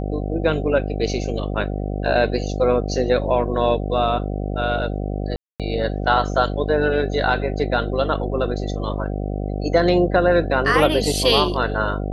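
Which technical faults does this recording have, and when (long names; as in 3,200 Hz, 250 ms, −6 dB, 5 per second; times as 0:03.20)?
mains buzz 50 Hz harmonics 15 −25 dBFS
0:05.36–0:05.60: drop-out 237 ms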